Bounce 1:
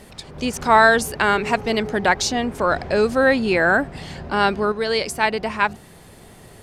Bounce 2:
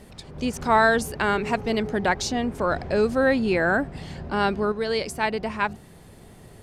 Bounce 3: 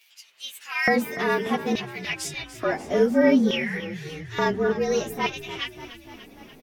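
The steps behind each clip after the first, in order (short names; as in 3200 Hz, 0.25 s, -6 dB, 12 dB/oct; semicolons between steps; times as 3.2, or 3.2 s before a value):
low shelf 470 Hz +6 dB; gain -6.5 dB
inharmonic rescaling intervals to 110%; LFO high-pass square 0.57 Hz 260–2700 Hz; frequency-shifting echo 0.292 s, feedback 65%, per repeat -36 Hz, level -14 dB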